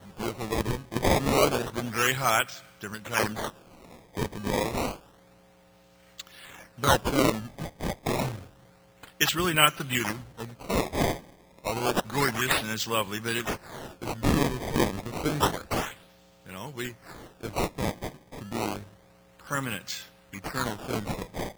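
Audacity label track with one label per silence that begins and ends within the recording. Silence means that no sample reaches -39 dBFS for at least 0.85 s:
4.960000	6.190000	silence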